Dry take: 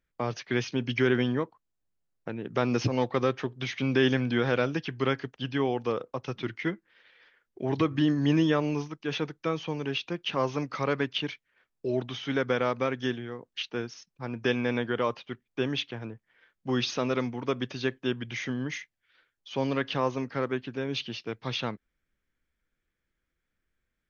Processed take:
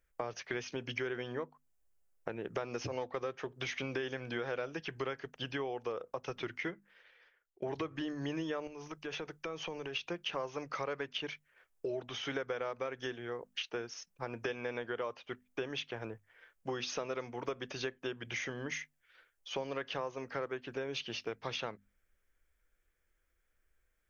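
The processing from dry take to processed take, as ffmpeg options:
-filter_complex "[0:a]asettb=1/sr,asplit=3[s0][s1][s2];[s0]atrim=end=8.674[s3];[s1]atrim=start=8.67:end=9.96,asetpts=PTS-STARTPTS,afade=t=in:d=0.004:c=qsin,afade=t=out:st=1.286:d=0.004:c=qsin,acompressor=threshold=0.0158:ratio=6:attack=3.2:release=140:knee=1:detection=peak[s4];[s2]atrim=start=9.956[s5];[s3][s4]acrossfade=d=0.004:c1=hsin:c2=qsin[s6];[s6][s5]acrossfade=d=0.004:c1=qsin:c2=hsin,asplit=2[s7][s8];[s7]atrim=end=7.62,asetpts=PTS-STARTPTS,afade=t=out:st=6.59:d=1.03:silence=0.0891251[s9];[s8]atrim=start=7.62,asetpts=PTS-STARTPTS,afade=t=in:d=0.004:c=hsin:silence=0.0891251[s10];[s9][s10]concat=n=2:v=0:a=1,equalizer=f=125:t=o:w=1:g=-11,equalizer=f=250:t=o:w=1:g=-12,equalizer=f=1000:t=o:w=1:g=-4,equalizer=f=2000:t=o:w=1:g=-3,equalizer=f=4000:t=o:w=1:g=-9,acompressor=threshold=0.00794:ratio=6,bandreject=f=50:t=h:w=6,bandreject=f=100:t=h:w=6,bandreject=f=150:t=h:w=6,bandreject=f=200:t=h:w=6,bandreject=f=250:t=h:w=6,volume=2.24"

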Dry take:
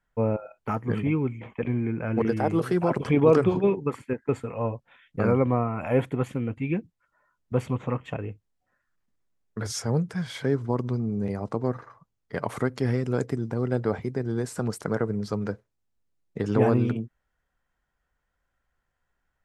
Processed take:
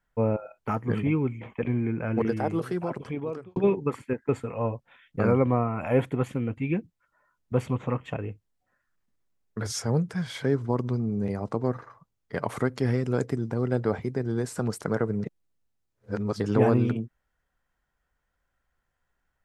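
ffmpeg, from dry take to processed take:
-filter_complex "[0:a]asplit=4[s0][s1][s2][s3];[s0]atrim=end=3.56,asetpts=PTS-STARTPTS,afade=t=out:st=2.02:d=1.54[s4];[s1]atrim=start=3.56:end=15.242,asetpts=PTS-STARTPTS,afade=t=in:d=0.004:c=hsin[s5];[s2]atrim=start=15.238:end=16.402,asetpts=PTS-STARTPTS,areverse[s6];[s3]atrim=start=16.398[s7];[s4][s5]concat=n=2:v=0:a=1[s8];[s8][s6]acrossfade=d=0.004:c1=hsin:c2=hsin[s9];[s9][s7]acrossfade=d=0.004:c1=hsin:c2=hsin"

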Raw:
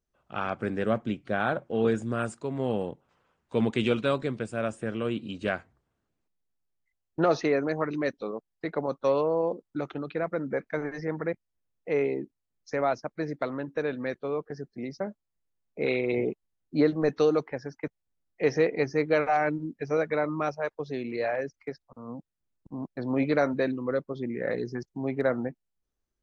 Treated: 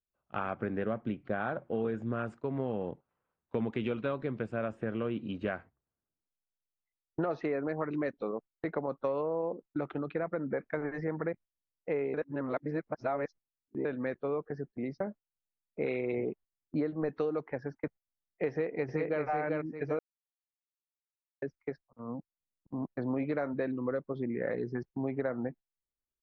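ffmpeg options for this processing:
-filter_complex "[0:a]asplit=2[s0][s1];[s1]afade=t=in:st=18.49:d=0.01,afade=t=out:st=19.22:d=0.01,aecho=0:1:390|780|1170:0.749894|0.149979|0.0299958[s2];[s0][s2]amix=inputs=2:normalize=0,asplit=5[s3][s4][s5][s6][s7];[s3]atrim=end=12.142[s8];[s4]atrim=start=12.138:end=13.852,asetpts=PTS-STARTPTS,areverse[s9];[s5]atrim=start=13.848:end=19.99,asetpts=PTS-STARTPTS,afade=t=out:st=6.138:d=0.004:c=hsin[s10];[s6]atrim=start=19.99:end=21.42,asetpts=PTS-STARTPTS,volume=0[s11];[s7]atrim=start=21.42,asetpts=PTS-STARTPTS,afade=t=in:d=0.004:c=hsin[s12];[s8][s9]acrossfade=d=0.004:c1=hsin:c2=hsin[s13];[s10][s11][s12]concat=n=3:v=0:a=1[s14];[s13][s14]acrossfade=d=0.004:c1=hsin:c2=hsin,lowpass=2200,agate=range=0.2:threshold=0.00631:ratio=16:detection=peak,acompressor=threshold=0.0355:ratio=6"

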